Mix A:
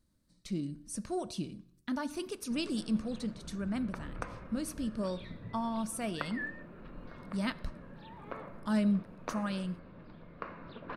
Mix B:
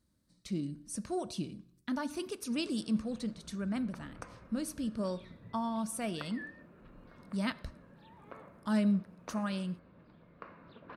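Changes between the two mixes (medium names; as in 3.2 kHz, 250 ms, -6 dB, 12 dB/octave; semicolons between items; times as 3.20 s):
background -7.0 dB; master: add high-pass 47 Hz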